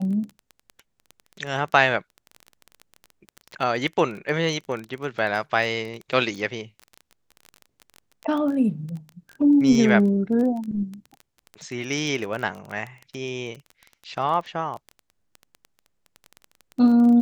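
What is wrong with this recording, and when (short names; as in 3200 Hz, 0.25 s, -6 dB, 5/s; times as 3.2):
crackle 18/s -29 dBFS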